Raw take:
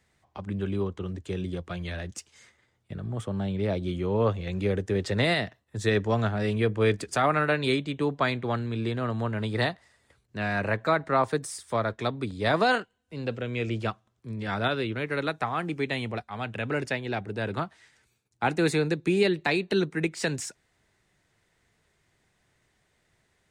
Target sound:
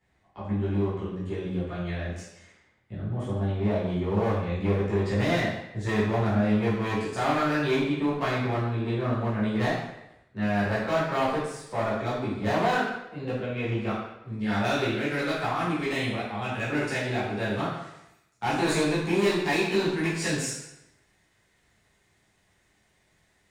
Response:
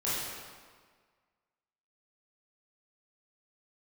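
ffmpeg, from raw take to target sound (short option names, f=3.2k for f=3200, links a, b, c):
-filter_complex "[0:a]asetnsamples=n=441:p=0,asendcmd='14.38 highshelf g 3.5',highshelf=f=3.6k:g=-10.5,asoftclip=type=hard:threshold=-23dB[a];[1:a]atrim=start_sample=2205,asetrate=83790,aresample=44100[b];[a][b]afir=irnorm=-1:irlink=0"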